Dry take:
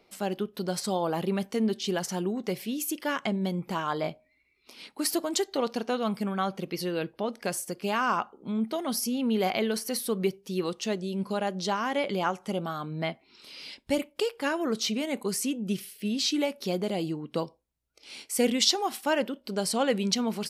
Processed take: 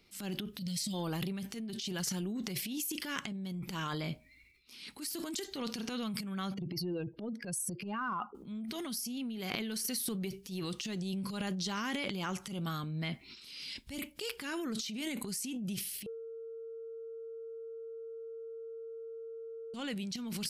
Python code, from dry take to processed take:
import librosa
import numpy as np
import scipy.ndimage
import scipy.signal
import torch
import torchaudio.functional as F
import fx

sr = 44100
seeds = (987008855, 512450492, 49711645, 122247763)

y = fx.spec_box(x, sr, start_s=0.58, length_s=0.36, low_hz=260.0, high_hz=1800.0, gain_db=-20)
y = fx.spec_expand(y, sr, power=2.0, at=(6.54, 8.35))
y = fx.edit(y, sr, fx.bleep(start_s=16.06, length_s=3.68, hz=455.0, db=-11.0), tone=tone)
y = fx.tone_stack(y, sr, knobs='6-0-2')
y = fx.over_compress(y, sr, threshold_db=-51.0, ratio=-1.0)
y = fx.transient(y, sr, attack_db=-9, sustain_db=10)
y = F.gain(torch.from_numpy(y), 12.0).numpy()